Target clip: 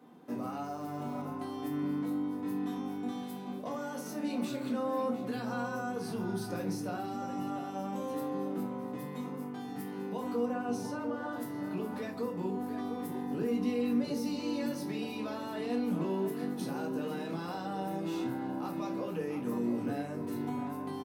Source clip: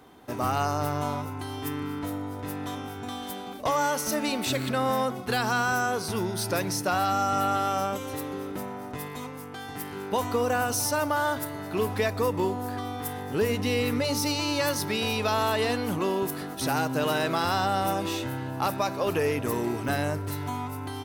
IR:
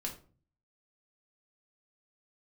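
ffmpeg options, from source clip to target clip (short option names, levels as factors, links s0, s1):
-filter_complex "[0:a]asettb=1/sr,asplit=3[s0][s1][s2];[s0]atrim=end=10.454[s3];[s1]atrim=start=10.45:end=11.33,asetpts=PTS-STARTPTS,afade=t=in:d=0.004:c=qsin,afade=t=out:st=0.876:d=0.004:c=qsin,aemphasis=mode=reproduction:type=50fm[s4];[s2]atrim=start=11.326[s5];[s3][s4]acrossfade=d=0.004:c1=hsin:c2=qsin[s6];[s6][s5]acrossfade=d=0.004:c1=qsin:c2=hsin,alimiter=limit=0.0668:level=0:latency=1:release=107,highpass=f=140:w=0.5412,highpass=f=140:w=1.3066[s7];[1:a]atrim=start_sample=2205,atrim=end_sample=3969[s8];[s7][s8]afir=irnorm=-1:irlink=0,asettb=1/sr,asplit=3[s9][s10][s11];[s9]atrim=end=0.644[s12];[s10]atrim=start=0.64:end=1.22,asetpts=PTS-STARTPTS,afade=t=in:d=0.004:c=qsin,afade=t=out:st=0.576:d=0.004:c=qsin,acrusher=bits=9:dc=4:mix=0:aa=0.000001[s13];[s11]atrim=start=1.216[s14];[s12][s13]acrossfade=d=0.004:c1=hsin:c2=qsin[s15];[s15][s14]acrossfade=d=0.004:c1=qsin:c2=hsin,tiltshelf=f=770:g=5,asplit=2[s16][s17];[s17]adelay=699.7,volume=0.398,highshelf=f=4000:g=-15.7[s18];[s16][s18]amix=inputs=2:normalize=0,volume=0.473"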